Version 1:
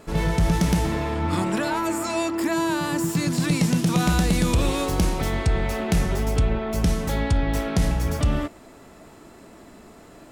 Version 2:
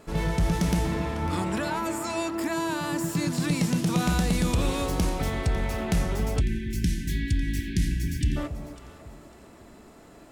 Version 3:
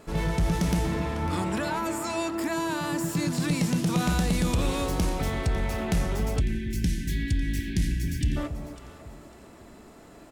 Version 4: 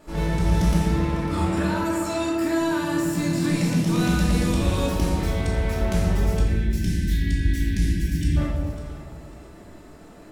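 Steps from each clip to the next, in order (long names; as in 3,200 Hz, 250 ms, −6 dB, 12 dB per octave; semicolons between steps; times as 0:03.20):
delay that swaps between a low-pass and a high-pass 275 ms, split 830 Hz, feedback 54%, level −10.5 dB; time-frequency box erased 0:06.40–0:08.36, 390–1,500 Hz; level −4 dB
single-tap delay 122 ms −24 dB; in parallel at −8.5 dB: soft clipping −27.5 dBFS, distortion −9 dB; on the sum: level −2 dB
rectangular room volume 590 cubic metres, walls mixed, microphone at 2.6 metres; level −4 dB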